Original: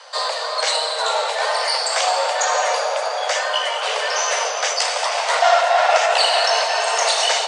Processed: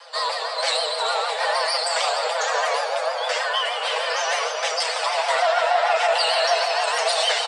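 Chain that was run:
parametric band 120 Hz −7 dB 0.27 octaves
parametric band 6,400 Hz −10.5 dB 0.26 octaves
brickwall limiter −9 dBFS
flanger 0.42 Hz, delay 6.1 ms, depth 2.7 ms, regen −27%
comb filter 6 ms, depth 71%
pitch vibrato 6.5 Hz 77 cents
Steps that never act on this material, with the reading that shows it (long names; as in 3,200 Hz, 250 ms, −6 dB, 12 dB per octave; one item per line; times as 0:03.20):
parametric band 120 Hz: nothing at its input below 380 Hz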